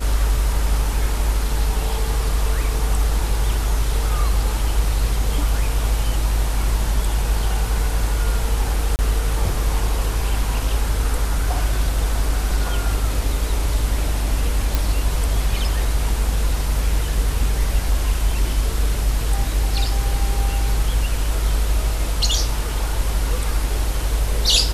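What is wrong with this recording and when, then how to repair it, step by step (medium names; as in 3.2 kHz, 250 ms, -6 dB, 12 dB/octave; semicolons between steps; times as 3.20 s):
8.96–8.99 s: dropout 29 ms
14.75 s: pop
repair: de-click; interpolate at 8.96 s, 29 ms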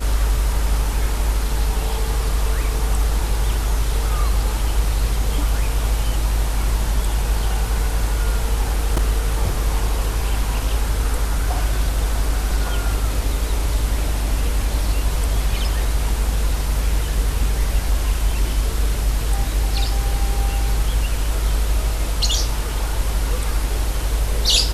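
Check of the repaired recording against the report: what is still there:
nothing left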